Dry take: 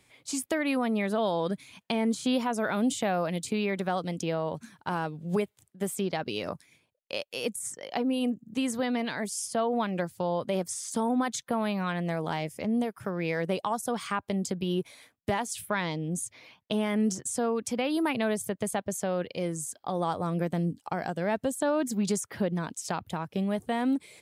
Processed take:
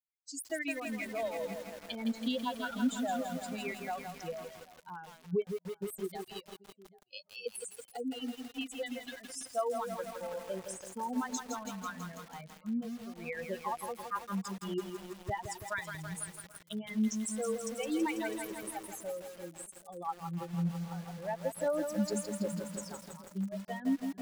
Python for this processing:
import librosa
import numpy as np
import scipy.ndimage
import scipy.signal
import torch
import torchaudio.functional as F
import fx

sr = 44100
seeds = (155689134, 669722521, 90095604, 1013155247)

p1 = fx.bin_expand(x, sr, power=3.0)
p2 = p1 + fx.echo_single(p1, sr, ms=339, db=-20.5, dry=0)
p3 = fx.dereverb_blind(p2, sr, rt60_s=0.92)
p4 = fx.echo_filtered(p3, sr, ms=785, feedback_pct=29, hz=830.0, wet_db=-20)
y = fx.echo_crushed(p4, sr, ms=164, feedback_pct=80, bits=8, wet_db=-6.0)